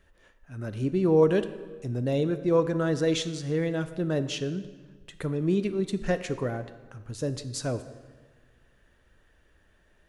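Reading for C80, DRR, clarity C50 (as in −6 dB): 14.0 dB, 11.0 dB, 12.5 dB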